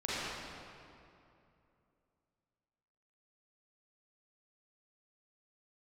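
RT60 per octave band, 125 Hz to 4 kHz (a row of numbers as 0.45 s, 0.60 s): 3.2 s, 3.0 s, 2.8 s, 2.6 s, 2.2 s, 1.7 s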